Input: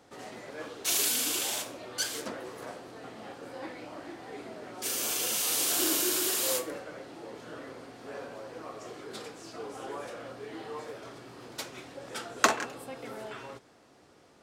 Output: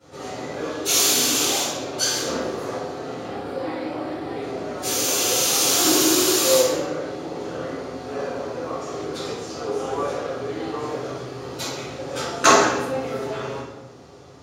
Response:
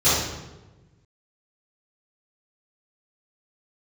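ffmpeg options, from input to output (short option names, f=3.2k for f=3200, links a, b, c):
-filter_complex "[0:a]asettb=1/sr,asplit=3[a][b][c];[a]atrim=end=3.254[d];[b]atrim=start=3.25:end=4.41,asetpts=PTS-STARTPTS,afade=t=in:d=0.004:c=qsin,afade=t=out:st=1.156:d=0.004:c=qsin,equalizer=f=6.4k:w=4.3:g=-14.5[e];[c]atrim=start=4.406[f];[d][e]acrossfade=d=0.004:c1=hsin:c2=qsin[g];[g][f]acrossfade=d=0.004:c1=qsin:c2=hsin[h];[1:a]atrim=start_sample=2205[i];[h][i]afir=irnorm=-1:irlink=0,volume=-8.5dB"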